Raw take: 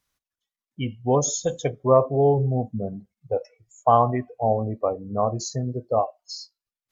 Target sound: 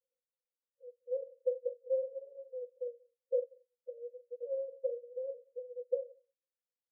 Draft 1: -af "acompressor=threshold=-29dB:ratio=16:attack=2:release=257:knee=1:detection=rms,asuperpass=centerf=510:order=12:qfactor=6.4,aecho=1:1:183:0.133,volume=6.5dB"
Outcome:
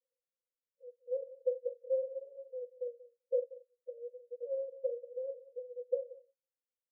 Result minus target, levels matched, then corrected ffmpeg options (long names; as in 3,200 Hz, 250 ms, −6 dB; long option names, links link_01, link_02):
echo-to-direct +10.5 dB
-af "acompressor=threshold=-29dB:ratio=16:attack=2:release=257:knee=1:detection=rms,asuperpass=centerf=510:order=12:qfactor=6.4,aecho=1:1:183:0.0398,volume=6.5dB"